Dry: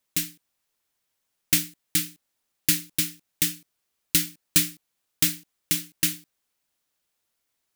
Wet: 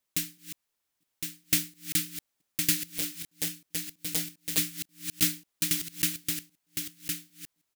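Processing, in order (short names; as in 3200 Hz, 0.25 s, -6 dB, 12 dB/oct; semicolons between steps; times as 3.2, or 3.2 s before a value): reverse delay 0.345 s, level -12.5 dB; echo 1.061 s -5.5 dB; 2.92–4.58 core saturation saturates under 3000 Hz; gain -4 dB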